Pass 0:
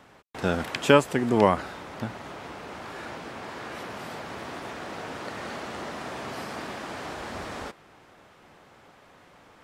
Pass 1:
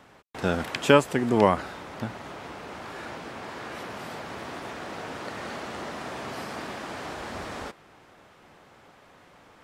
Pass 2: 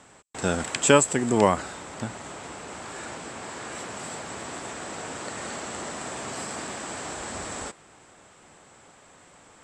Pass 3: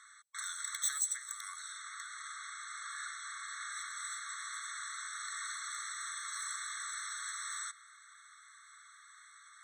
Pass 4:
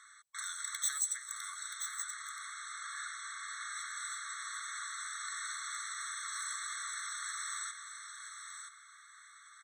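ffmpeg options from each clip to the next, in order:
ffmpeg -i in.wav -af anull out.wav
ffmpeg -i in.wav -af "lowpass=frequency=7800:width_type=q:width=13" out.wav
ffmpeg -i in.wav -filter_complex "[0:a]acrossover=split=320|3000[link_01][link_02][link_03];[link_02]acompressor=threshold=-37dB:ratio=6[link_04];[link_01][link_04][link_03]amix=inputs=3:normalize=0,asoftclip=type=tanh:threshold=-24.5dB,afftfilt=real='re*eq(mod(floor(b*sr/1024/1100),2),1)':imag='im*eq(mod(floor(b*sr/1024/1100),2),1)':win_size=1024:overlap=0.75" out.wav
ffmpeg -i in.wav -af "aecho=1:1:977:0.447" out.wav

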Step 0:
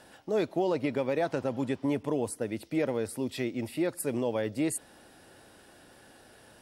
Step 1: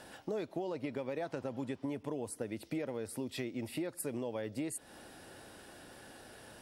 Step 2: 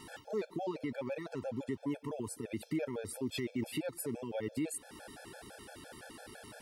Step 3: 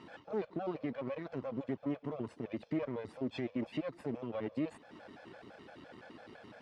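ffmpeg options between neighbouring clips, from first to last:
ffmpeg -i in.wav -af "acompressor=threshold=-38dB:ratio=5,volume=2dB" out.wav
ffmpeg -i in.wav -af "alimiter=level_in=7dB:limit=-24dB:level=0:latency=1:release=22,volume=-7dB,afftfilt=real='re*gt(sin(2*PI*5.9*pts/sr)*(1-2*mod(floor(b*sr/1024/450),2)),0)':imag='im*gt(sin(2*PI*5.9*pts/sr)*(1-2*mod(floor(b*sr/1024/450),2)),0)':win_size=1024:overlap=0.75,volume=5.5dB" out.wav
ffmpeg -i in.wav -af "aeval=exprs='if(lt(val(0),0),0.251*val(0),val(0))':channel_layout=same,highpass=210,lowpass=4400,aemphasis=mode=reproduction:type=bsi,volume=1.5dB" out.wav

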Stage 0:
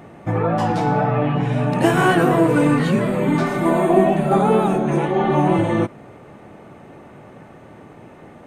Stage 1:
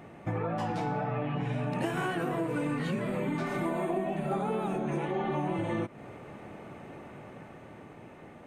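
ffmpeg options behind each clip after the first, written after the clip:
ffmpeg -i in.wav -af "dynaudnorm=framelen=360:gausssize=9:maxgain=11.5dB,equalizer=frequency=2400:width_type=o:width=0.77:gain=3.5,acompressor=threshold=-21dB:ratio=6,volume=-7.5dB" out.wav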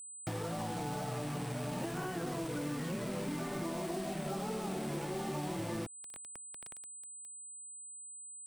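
ffmpeg -i in.wav -filter_complex "[0:a]acrusher=bits=5:mix=0:aa=0.000001,aeval=exprs='val(0)+0.00794*sin(2*PI*8100*n/s)':channel_layout=same,acrossover=split=260|1100[link_01][link_02][link_03];[link_01]acompressor=threshold=-36dB:ratio=4[link_04];[link_02]acompressor=threshold=-36dB:ratio=4[link_05];[link_03]acompressor=threshold=-43dB:ratio=4[link_06];[link_04][link_05][link_06]amix=inputs=3:normalize=0,volume=-3dB" out.wav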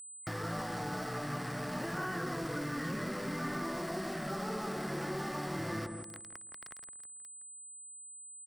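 ffmpeg -i in.wav -filter_complex "[0:a]superequalizer=10b=2.51:11b=2.82:14b=1.78,asplit=2[link_01][link_02];[link_02]alimiter=level_in=6.5dB:limit=-24dB:level=0:latency=1,volume=-6.5dB,volume=-2.5dB[link_03];[link_01][link_03]amix=inputs=2:normalize=0,asplit=2[link_04][link_05];[link_05]adelay=165,lowpass=frequency=920:poles=1,volume=-4dB,asplit=2[link_06][link_07];[link_07]adelay=165,lowpass=frequency=920:poles=1,volume=0.39,asplit=2[link_08][link_09];[link_09]adelay=165,lowpass=frequency=920:poles=1,volume=0.39,asplit=2[link_10][link_11];[link_11]adelay=165,lowpass=frequency=920:poles=1,volume=0.39,asplit=2[link_12][link_13];[link_13]adelay=165,lowpass=frequency=920:poles=1,volume=0.39[link_14];[link_04][link_06][link_08][link_10][link_12][link_14]amix=inputs=6:normalize=0,volume=-5dB" out.wav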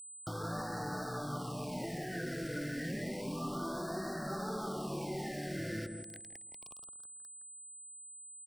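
ffmpeg -i in.wav -af "afftfilt=real='re*(1-between(b*sr/1024,950*pow(2700/950,0.5+0.5*sin(2*PI*0.3*pts/sr))/1.41,950*pow(2700/950,0.5+0.5*sin(2*PI*0.3*pts/sr))*1.41))':imag='im*(1-between(b*sr/1024,950*pow(2700/950,0.5+0.5*sin(2*PI*0.3*pts/sr))/1.41,950*pow(2700/950,0.5+0.5*sin(2*PI*0.3*pts/sr))*1.41))':win_size=1024:overlap=0.75,volume=-1dB" out.wav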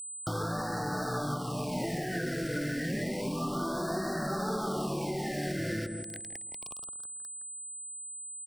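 ffmpeg -i in.wav -af "alimiter=level_in=7dB:limit=-24dB:level=0:latency=1:release=487,volume=-7dB,volume=8.5dB" out.wav

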